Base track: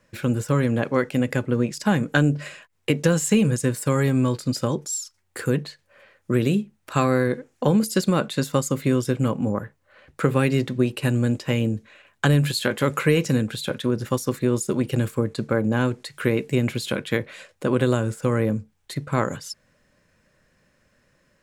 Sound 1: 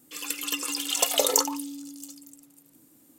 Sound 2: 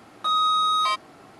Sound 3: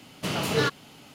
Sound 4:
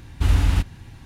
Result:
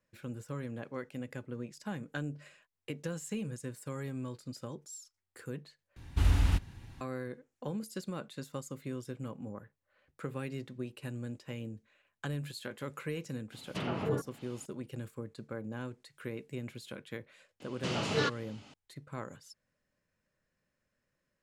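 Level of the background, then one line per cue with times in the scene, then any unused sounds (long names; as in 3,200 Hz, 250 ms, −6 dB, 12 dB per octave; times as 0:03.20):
base track −19 dB
0:05.96: overwrite with 4 −8 dB
0:13.52: mix in 3 −6.5 dB + treble cut that deepens with the level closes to 650 Hz, closed at −21.5 dBFS
0:17.60: mix in 3 −6 dB + low-pass filter 7,600 Hz 24 dB per octave
not used: 1, 2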